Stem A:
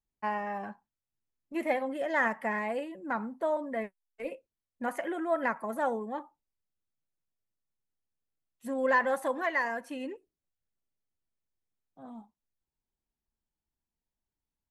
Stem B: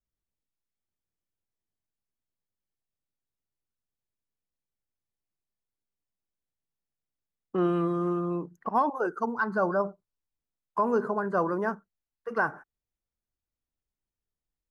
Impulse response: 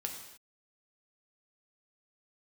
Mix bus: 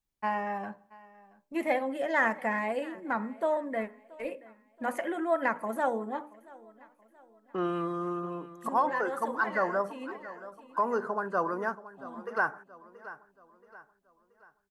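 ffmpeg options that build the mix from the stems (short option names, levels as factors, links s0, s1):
-filter_complex "[0:a]bandreject=f=60:t=h:w=6,bandreject=f=120:t=h:w=6,bandreject=f=180:t=h:w=6,bandreject=f=240:t=h:w=6,bandreject=f=300:t=h:w=6,bandreject=f=360:t=h:w=6,bandreject=f=420:t=h:w=6,bandreject=f=480:t=h:w=6,bandreject=f=540:t=h:w=6,bandreject=f=600:t=h:w=6,volume=1.12,asplit=3[s0][s1][s2];[s1]volume=0.112[s3];[s2]volume=0.0841[s4];[1:a]lowshelf=f=400:g=-11,volume=1.06,asplit=3[s5][s6][s7];[s6]volume=0.158[s8];[s7]apad=whole_len=648432[s9];[s0][s9]sidechaincompress=threshold=0.0112:ratio=8:attack=49:release=414[s10];[2:a]atrim=start_sample=2205[s11];[s3][s11]afir=irnorm=-1:irlink=0[s12];[s4][s8]amix=inputs=2:normalize=0,aecho=0:1:678|1356|2034|2712|3390|4068:1|0.42|0.176|0.0741|0.0311|0.0131[s13];[s10][s5][s12][s13]amix=inputs=4:normalize=0"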